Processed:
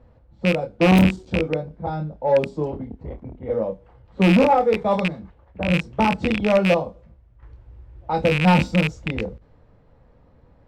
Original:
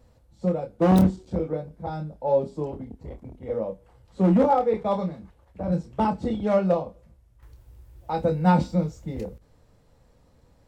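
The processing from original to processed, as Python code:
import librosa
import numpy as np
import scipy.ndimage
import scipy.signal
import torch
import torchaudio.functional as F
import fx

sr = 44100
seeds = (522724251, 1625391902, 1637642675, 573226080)

y = fx.rattle_buzz(x, sr, strikes_db=-28.0, level_db=-16.0)
y = fx.env_lowpass(y, sr, base_hz=2100.0, full_db=-18.0)
y = 10.0 ** (-12.5 / 20.0) * np.tanh(y / 10.0 ** (-12.5 / 20.0))
y = y * librosa.db_to_amplitude(5.0)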